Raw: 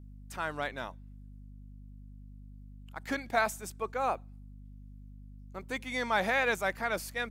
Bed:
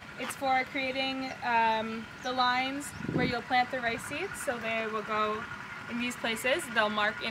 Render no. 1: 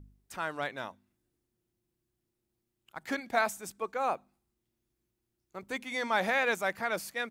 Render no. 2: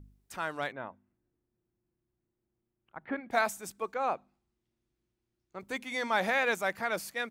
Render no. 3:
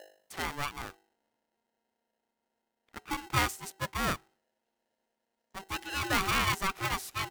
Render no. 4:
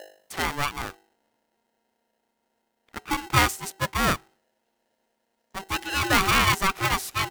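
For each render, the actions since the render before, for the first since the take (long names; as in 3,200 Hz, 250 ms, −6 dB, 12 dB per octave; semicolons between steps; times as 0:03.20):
hum removal 50 Hz, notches 5
0:00.72–0:03.31: Gaussian smoothing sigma 3.9 samples; 0:03.94–0:05.60: high-frequency loss of the air 77 metres
ring modulator with a square carrier 580 Hz
level +8 dB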